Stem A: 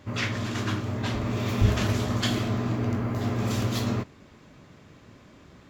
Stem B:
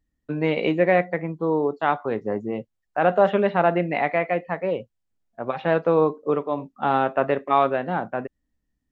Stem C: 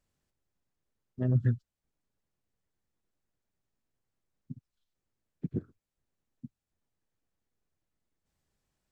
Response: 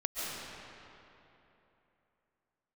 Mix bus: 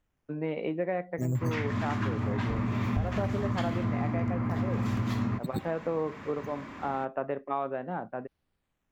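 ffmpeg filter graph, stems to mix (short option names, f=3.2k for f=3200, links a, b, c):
-filter_complex "[0:a]equalizer=f=250:t=o:w=1:g=8,equalizer=f=1k:t=o:w=1:g=12,equalizer=f=2k:t=o:w=1:g=10,acrossover=split=200[a][b];[b]acompressor=threshold=-43dB:ratio=2[c];[a][c]amix=inputs=2:normalize=0,adelay=1350,volume=1.5dB[d];[1:a]lowpass=f=1.4k:p=1,volume=-8dB[e];[2:a]acrusher=samples=9:mix=1:aa=0.000001:lfo=1:lforange=5.4:lforate=0.57,volume=1dB[f];[d][e][f]amix=inputs=3:normalize=0,acompressor=threshold=-26dB:ratio=5"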